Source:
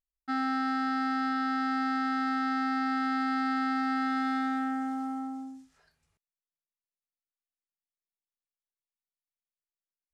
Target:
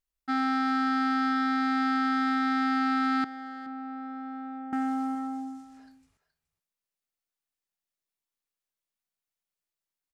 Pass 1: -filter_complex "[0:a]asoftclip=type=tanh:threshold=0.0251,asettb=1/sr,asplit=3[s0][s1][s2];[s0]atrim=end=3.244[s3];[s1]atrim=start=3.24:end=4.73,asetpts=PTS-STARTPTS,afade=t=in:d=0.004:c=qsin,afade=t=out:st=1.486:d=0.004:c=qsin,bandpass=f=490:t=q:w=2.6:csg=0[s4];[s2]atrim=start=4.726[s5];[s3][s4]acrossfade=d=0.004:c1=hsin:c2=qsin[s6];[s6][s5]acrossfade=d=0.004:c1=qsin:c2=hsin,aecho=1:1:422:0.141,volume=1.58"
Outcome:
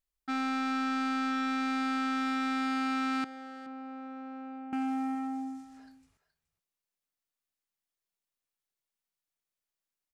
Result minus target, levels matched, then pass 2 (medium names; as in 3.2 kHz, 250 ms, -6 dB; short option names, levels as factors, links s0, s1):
saturation: distortion +13 dB
-filter_complex "[0:a]asoftclip=type=tanh:threshold=0.0841,asettb=1/sr,asplit=3[s0][s1][s2];[s0]atrim=end=3.244[s3];[s1]atrim=start=3.24:end=4.73,asetpts=PTS-STARTPTS,afade=t=in:d=0.004:c=qsin,afade=t=out:st=1.486:d=0.004:c=qsin,bandpass=f=490:t=q:w=2.6:csg=0[s4];[s2]atrim=start=4.726[s5];[s3][s4]acrossfade=d=0.004:c1=hsin:c2=qsin[s6];[s6][s5]acrossfade=d=0.004:c1=qsin:c2=hsin,aecho=1:1:422:0.141,volume=1.58"